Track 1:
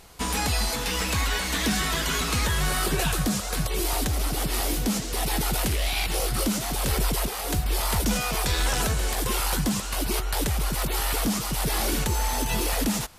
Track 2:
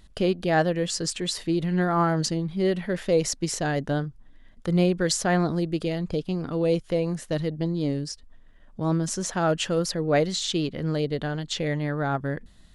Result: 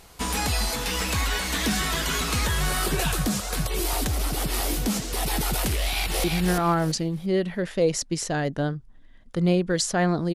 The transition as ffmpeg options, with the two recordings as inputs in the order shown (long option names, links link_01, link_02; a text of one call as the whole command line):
ffmpeg -i cue0.wav -i cue1.wav -filter_complex "[0:a]apad=whole_dur=10.34,atrim=end=10.34,atrim=end=6.242[link_01];[1:a]atrim=start=1.548:end=5.65[link_02];[link_01][link_02]acrossfade=duration=0.004:curve1=hsin:curve2=hsin,asplit=2[link_03][link_04];[link_04]afade=type=in:start_time=5.8:duration=0.01,afade=type=out:start_time=6.24:duration=0.01,aecho=0:1:340|680|1020|1360:0.707946|0.176986|0.0442466|0.0110617[link_05];[link_03][link_05]amix=inputs=2:normalize=0" out.wav